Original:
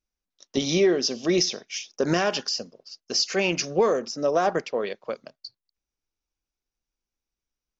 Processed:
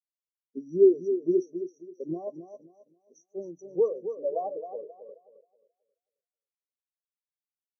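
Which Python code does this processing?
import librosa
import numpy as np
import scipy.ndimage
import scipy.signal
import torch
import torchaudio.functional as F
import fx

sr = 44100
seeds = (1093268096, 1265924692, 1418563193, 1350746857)

p1 = fx.brickwall_bandstop(x, sr, low_hz=1200.0, high_hz=5600.0)
p2 = p1 + fx.echo_feedback(p1, sr, ms=267, feedback_pct=59, wet_db=-4, dry=0)
y = fx.spectral_expand(p2, sr, expansion=2.5)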